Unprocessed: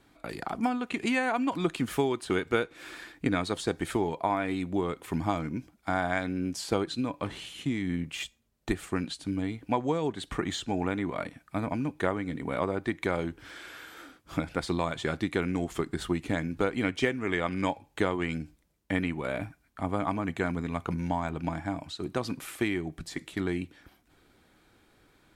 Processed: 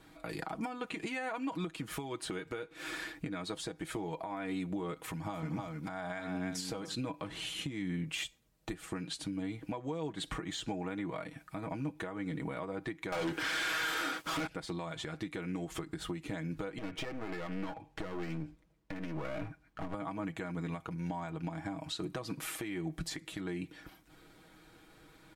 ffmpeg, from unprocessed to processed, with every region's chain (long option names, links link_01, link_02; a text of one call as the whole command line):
ffmpeg -i in.wav -filter_complex "[0:a]asettb=1/sr,asplit=3[link_01][link_02][link_03];[link_01]atrim=end=4.964[link_04];[link_02]atrim=start=4.96:end=6.95,asetpts=PTS-STARTPTS,afade=type=in:duration=0.004:curve=qsin,afade=type=out:start_time=1.986:duration=0.004:curve=qsin,equalizer=frequency=340:width_type=o:width=0.42:gain=-6,aecho=1:1:95|302:0.119|0.335,atrim=end_sample=87759[link_05];[link_03]atrim=start=6.946[link_06];[link_04][link_05]acrossfade=duration=0.004:curve1=hsin:curve2=qsin[link_07];[link_07][link_06]acrossfade=duration=0.004:curve1=qsin:curve2=hsin,asettb=1/sr,asplit=3[link_08][link_09][link_10];[link_08]atrim=end=13.124[link_11];[link_09]atrim=start=13.12:end=14.47,asetpts=PTS-STARTPTS,afade=type=in:duration=0.004:curve=qsin,afade=type=out:start_time=1.346:duration=0.004:curve=qsin,asplit=2[link_12][link_13];[link_13]highpass=frequency=720:poles=1,volume=35dB,asoftclip=type=tanh:threshold=-14.5dB[link_14];[link_12][link_14]amix=inputs=2:normalize=0,lowpass=frequency=7000:poles=1,volume=-6dB,aeval=exprs='sgn(val(0))*max(abs(val(0))-0.00282,0)':channel_layout=same[link_15];[link_10]atrim=start=14.466[link_16];[link_11][link_15]acrossfade=duration=0.004:curve1=hsin:curve2=qsin[link_17];[link_17][link_16]acrossfade=duration=0.004:curve1=qsin:curve2=hsin,asettb=1/sr,asplit=3[link_18][link_19][link_20];[link_18]atrim=end=16.784[link_21];[link_19]atrim=start=16.78:end=19.94,asetpts=PTS-STARTPTS,afade=type=in:duration=0.004:curve=qsin,afade=type=out:start_time=3.156:duration=0.004:curve=qsin,aemphasis=mode=reproduction:type=75kf,acompressor=threshold=-32dB:ratio=5:attack=3.2:release=140:knee=1:detection=peak,aeval=exprs='clip(val(0),-1,0.00596)':channel_layout=same[link_22];[link_20]atrim=start=19.936[link_23];[link_21][link_22]acrossfade=duration=0.004:curve1=hsin:curve2=qsin[link_24];[link_24][link_23]acrossfade=duration=0.004:curve1=qsin:curve2=hsin,aecho=1:1:6.3:0.62,acompressor=threshold=-34dB:ratio=6,alimiter=level_in=5.5dB:limit=-24dB:level=0:latency=1:release=232,volume=-5.5dB,volume=2dB" out.wav